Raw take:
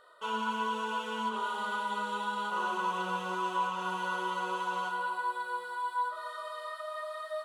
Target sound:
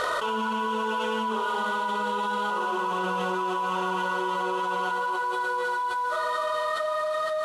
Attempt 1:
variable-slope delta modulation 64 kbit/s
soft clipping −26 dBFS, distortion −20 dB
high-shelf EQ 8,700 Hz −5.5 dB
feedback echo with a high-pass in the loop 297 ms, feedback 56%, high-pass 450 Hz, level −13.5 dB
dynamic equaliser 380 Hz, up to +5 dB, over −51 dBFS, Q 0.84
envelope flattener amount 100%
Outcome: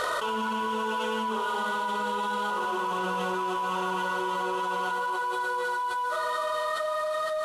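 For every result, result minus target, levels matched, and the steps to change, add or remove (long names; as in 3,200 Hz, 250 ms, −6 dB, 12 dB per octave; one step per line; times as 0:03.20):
soft clipping: distortion +15 dB; 8,000 Hz band +3.0 dB
change: soft clipping −17 dBFS, distortion −35 dB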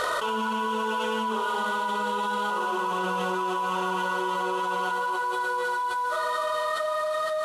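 8,000 Hz band +3.0 dB
change: high-shelf EQ 8,700 Hz −13 dB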